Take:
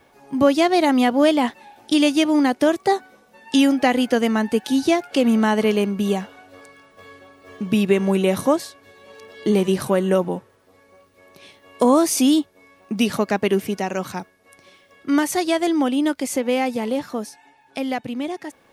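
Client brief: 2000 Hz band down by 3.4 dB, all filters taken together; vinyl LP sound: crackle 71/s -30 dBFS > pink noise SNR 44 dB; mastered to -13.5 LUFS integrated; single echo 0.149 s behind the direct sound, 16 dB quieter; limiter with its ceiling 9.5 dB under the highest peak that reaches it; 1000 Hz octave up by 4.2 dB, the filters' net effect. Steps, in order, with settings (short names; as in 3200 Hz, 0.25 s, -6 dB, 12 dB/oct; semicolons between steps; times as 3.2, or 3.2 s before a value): bell 1000 Hz +7 dB; bell 2000 Hz -6.5 dB; limiter -11.5 dBFS; echo 0.149 s -16 dB; crackle 71/s -30 dBFS; pink noise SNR 44 dB; gain +8 dB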